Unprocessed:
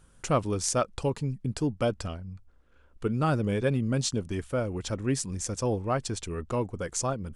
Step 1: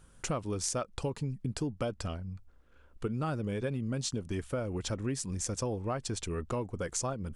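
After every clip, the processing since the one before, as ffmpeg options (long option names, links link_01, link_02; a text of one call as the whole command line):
ffmpeg -i in.wav -af "acompressor=threshold=-30dB:ratio=6" out.wav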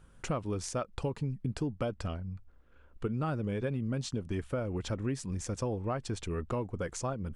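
ffmpeg -i in.wav -af "bass=frequency=250:gain=1,treble=frequency=4000:gain=-8" out.wav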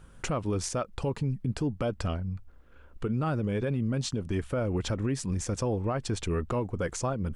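ffmpeg -i in.wav -af "alimiter=level_in=3dB:limit=-24dB:level=0:latency=1:release=44,volume=-3dB,volume=6dB" out.wav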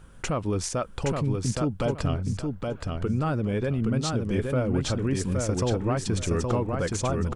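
ffmpeg -i in.wav -af "aecho=1:1:820|1640|2460:0.668|0.154|0.0354,volume=2.5dB" out.wav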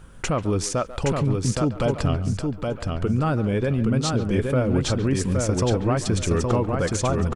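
ffmpeg -i in.wav -filter_complex "[0:a]asplit=2[link_01][link_02];[link_02]adelay=140,highpass=300,lowpass=3400,asoftclip=type=hard:threshold=-22dB,volume=-14dB[link_03];[link_01][link_03]amix=inputs=2:normalize=0,volume=4dB" out.wav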